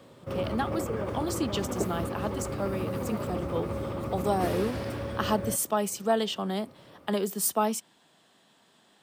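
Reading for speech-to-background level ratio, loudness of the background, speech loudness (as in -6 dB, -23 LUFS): 3.0 dB, -34.0 LUFS, -31.0 LUFS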